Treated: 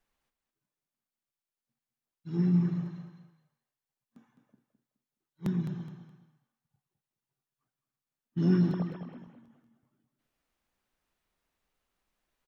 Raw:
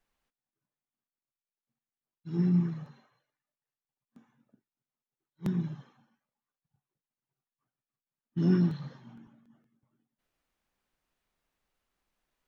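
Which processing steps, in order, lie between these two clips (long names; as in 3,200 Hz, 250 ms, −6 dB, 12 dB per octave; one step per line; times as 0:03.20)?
0:08.73–0:09.18: three sine waves on the formant tracks
repeating echo 210 ms, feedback 28%, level −9 dB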